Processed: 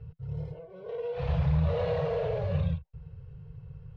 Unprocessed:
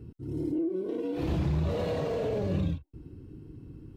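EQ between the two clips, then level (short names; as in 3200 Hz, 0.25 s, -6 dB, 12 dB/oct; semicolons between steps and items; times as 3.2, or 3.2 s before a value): elliptic band-stop 160–470 Hz, stop band 40 dB; air absorption 230 m; +3.5 dB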